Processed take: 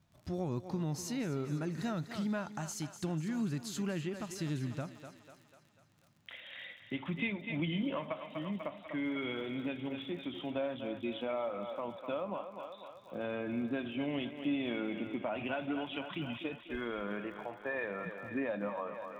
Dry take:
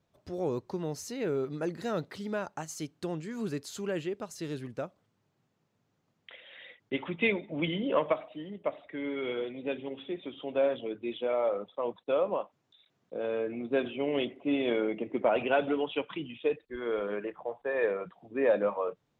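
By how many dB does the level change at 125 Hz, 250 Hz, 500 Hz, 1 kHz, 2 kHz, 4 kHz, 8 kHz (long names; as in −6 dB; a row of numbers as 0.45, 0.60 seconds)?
+3.0 dB, −1.0 dB, −9.5 dB, −5.5 dB, −4.0 dB, −2.5 dB, can't be measured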